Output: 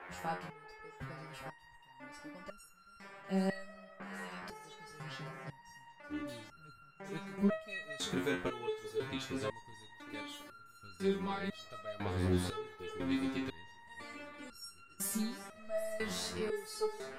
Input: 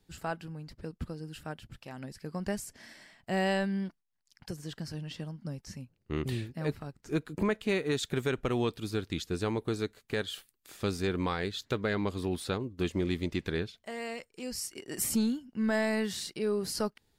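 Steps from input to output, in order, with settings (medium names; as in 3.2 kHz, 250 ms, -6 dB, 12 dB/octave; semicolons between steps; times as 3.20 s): echo whose repeats swap between lows and highs 390 ms, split 1.2 kHz, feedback 85%, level -12 dB; band noise 320–2000 Hz -46 dBFS; resonator arpeggio 2 Hz 90–1400 Hz; trim +6 dB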